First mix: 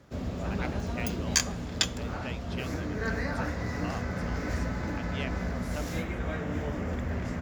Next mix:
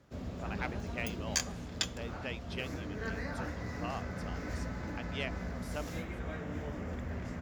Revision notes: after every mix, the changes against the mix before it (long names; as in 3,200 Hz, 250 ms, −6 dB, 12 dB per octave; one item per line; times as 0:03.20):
background −7.0 dB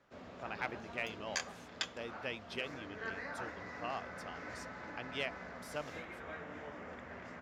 background: add resonant band-pass 1,400 Hz, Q 0.58